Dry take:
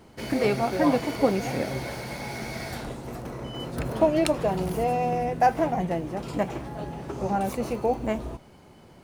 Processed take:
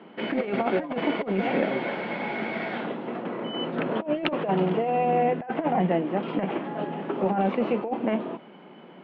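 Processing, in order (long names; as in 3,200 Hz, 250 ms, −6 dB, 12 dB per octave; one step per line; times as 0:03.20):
Chebyshev band-pass filter 180–3,200 Hz, order 4
compressor whose output falls as the input rises −27 dBFS, ratio −0.5
level +3.5 dB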